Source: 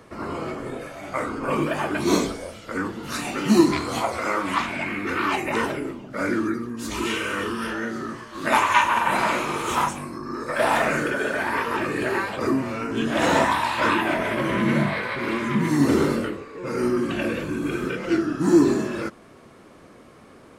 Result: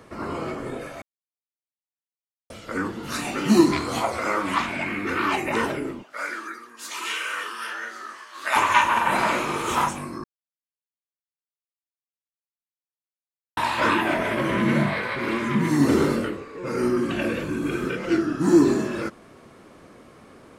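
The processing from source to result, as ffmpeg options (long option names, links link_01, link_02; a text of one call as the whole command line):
ffmpeg -i in.wav -filter_complex "[0:a]asplit=3[link_01][link_02][link_03];[link_01]afade=type=out:start_time=6.02:duration=0.02[link_04];[link_02]highpass=960,afade=type=in:start_time=6.02:duration=0.02,afade=type=out:start_time=8.55:duration=0.02[link_05];[link_03]afade=type=in:start_time=8.55:duration=0.02[link_06];[link_04][link_05][link_06]amix=inputs=3:normalize=0,asplit=5[link_07][link_08][link_09][link_10][link_11];[link_07]atrim=end=1.02,asetpts=PTS-STARTPTS,afade=type=out:start_time=1.016:duration=0.004:curve=hsin[link_12];[link_08]atrim=start=1.02:end=2.5,asetpts=PTS-STARTPTS,volume=0[link_13];[link_09]atrim=start=2.5:end=10.24,asetpts=PTS-STARTPTS,afade=type=in:duration=0.004:curve=hsin,afade=type=out:start_time=7.736:duration=0.004:curve=hsin[link_14];[link_10]atrim=start=10.24:end=13.57,asetpts=PTS-STARTPTS,volume=0[link_15];[link_11]atrim=start=13.57,asetpts=PTS-STARTPTS,afade=type=in:duration=0.004:curve=hsin[link_16];[link_12][link_13][link_14][link_15][link_16]concat=n=5:v=0:a=1" out.wav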